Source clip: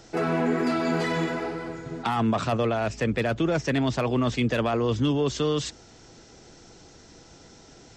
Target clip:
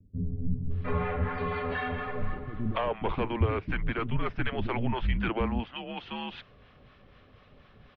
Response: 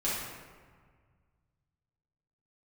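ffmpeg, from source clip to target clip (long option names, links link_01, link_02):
-filter_complex "[0:a]highpass=frequency=170:width_type=q:width=0.5412,highpass=frequency=170:width_type=q:width=1.307,lowpass=frequency=3400:width_type=q:width=0.5176,lowpass=frequency=3400:width_type=q:width=0.7071,lowpass=frequency=3400:width_type=q:width=1.932,afreqshift=-240,acrossover=split=700[link_01][link_02];[link_01]aeval=exprs='val(0)*(1-0.5/2+0.5/2*cos(2*PI*4.1*n/s))':channel_layout=same[link_03];[link_02]aeval=exprs='val(0)*(1-0.5/2-0.5/2*cos(2*PI*4.1*n/s))':channel_layout=same[link_04];[link_03][link_04]amix=inputs=2:normalize=0,acrossover=split=260[link_05][link_06];[link_06]adelay=710[link_07];[link_05][link_07]amix=inputs=2:normalize=0"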